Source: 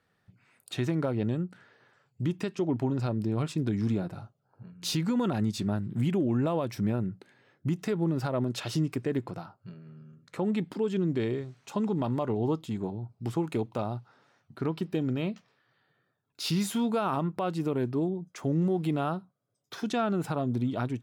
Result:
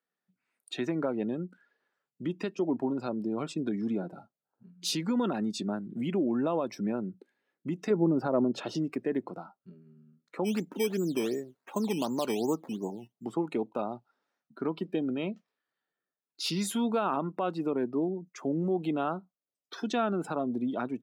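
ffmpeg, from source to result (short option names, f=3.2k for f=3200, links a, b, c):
-filter_complex "[0:a]asettb=1/sr,asplit=3[a][b][c];[a]atrim=end=7.904[d];[b]atrim=start=7.9:end=8.75,asetpts=PTS-STARTPTS,afade=t=in:d=0.004:c=qsin,afade=t=out:st=0.846:d=0.004:c=qsin,tiltshelf=f=1.3k:g=5.5[e];[c]atrim=start=8.746[f];[d][e]acrossfade=d=0.004:c1=hsin:c2=qsin[g];[g][f]acrossfade=d=0.004:c1=qsin:c2=hsin,asplit=3[h][i][j];[h]afade=t=out:st=10.44:d=0.02[k];[i]acrusher=samples=11:mix=1:aa=0.000001:lfo=1:lforange=11:lforate=2.7,afade=t=in:st=10.44:d=0.02,afade=t=out:st=13.24:d=0.02[l];[j]afade=t=in:st=13.24:d=0.02[m];[k][l][m]amix=inputs=3:normalize=0,highpass=f=200:w=0.5412,highpass=f=200:w=1.3066,afftdn=nr=17:nf=-46,highshelf=f=7.1k:g=3.5"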